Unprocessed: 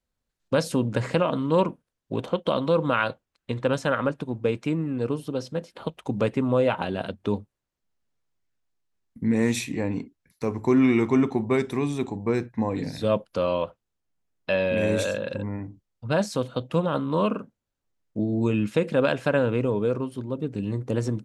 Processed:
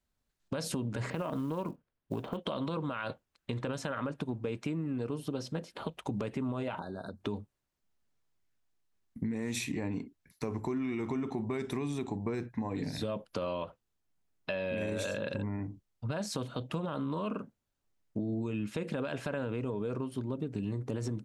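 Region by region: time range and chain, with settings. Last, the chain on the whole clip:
0:01.10–0:02.37: high-frequency loss of the air 270 metres + downward compressor, threshold −24 dBFS + floating-point word with a short mantissa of 4 bits
0:06.79–0:07.21: downward compressor 10 to 1, threshold −35 dBFS + linear-phase brick-wall band-stop 1,700–3,600 Hz
whole clip: notch filter 510 Hz, Q 12; brickwall limiter −19.5 dBFS; downward compressor, threshold −31 dBFS

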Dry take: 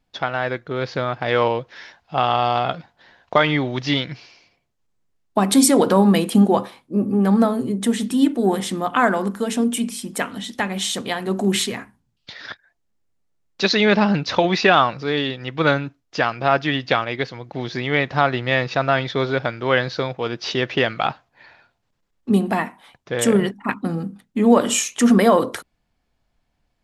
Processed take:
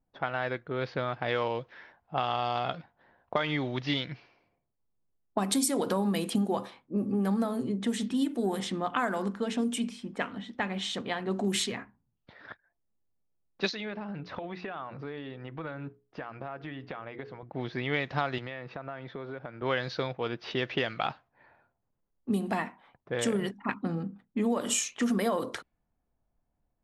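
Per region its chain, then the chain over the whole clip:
0:13.69–0:17.43: mains-hum notches 60/120/180/240/300/360/420/480 Hz + downward compressor 10 to 1, threshold −26 dBFS
0:18.38–0:19.62: high-pass filter 120 Hz + downward compressor 5 to 1, threshold −28 dBFS
whole clip: low-pass that shuts in the quiet parts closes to 1,000 Hz, open at −13.5 dBFS; high-shelf EQ 4,800 Hz +6 dB; downward compressor, threshold −17 dBFS; level −7.5 dB

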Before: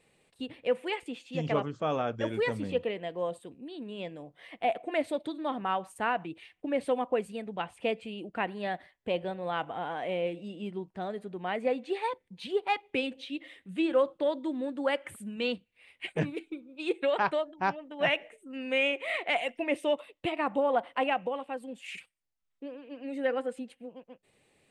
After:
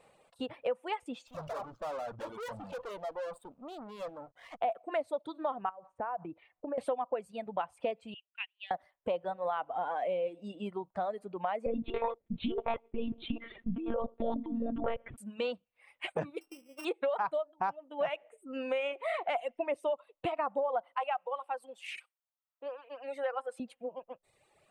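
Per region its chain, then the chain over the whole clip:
0:01.27–0:04.61: tube saturation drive 43 dB, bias 0.55 + upward compression, threshold −53 dBFS + slack as between gear wheels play −58.5 dBFS
0:05.69–0:06.78: low-pass filter 1,300 Hz + downward compressor 16 to 1, threshold −37 dBFS
0:08.14–0:08.71: flat-topped band-pass 2,900 Hz, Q 2.7 + transient designer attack +5 dB, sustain −12 dB
0:11.66–0:15.18: low shelf with overshoot 490 Hz +13 dB, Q 1.5 + compressor whose output falls as the input rises −23 dBFS + one-pitch LPC vocoder at 8 kHz 230 Hz
0:16.41–0:16.85: samples sorted by size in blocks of 16 samples + downward compressor 5 to 1, threshold −40 dBFS
0:20.97–0:23.60: high-pass filter 700 Hz + notch filter 7,100 Hz, Q 7.9
whole clip: reverb reduction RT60 1.4 s; flat-topped bell 840 Hz +11 dB; downward compressor 4 to 1, threshold −32 dBFS

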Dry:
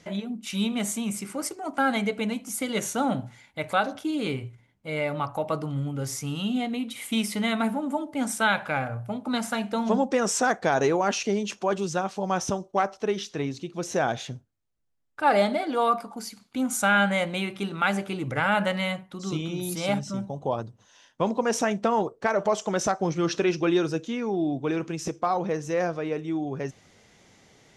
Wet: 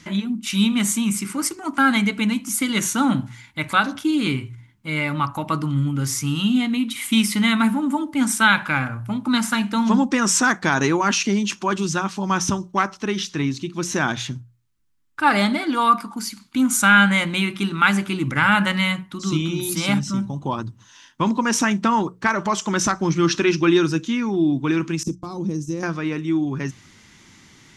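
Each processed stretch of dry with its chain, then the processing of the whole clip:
0:25.03–0:25.83: noise gate −38 dBFS, range −14 dB + drawn EQ curve 300 Hz 0 dB, 430 Hz −4 dB, 1,800 Hz −24 dB, 5,300 Hz −4 dB, 8,100 Hz 0 dB
whole clip: flat-topped bell 570 Hz −13.5 dB 1.1 octaves; mains-hum notches 60/120/180 Hz; level +8.5 dB

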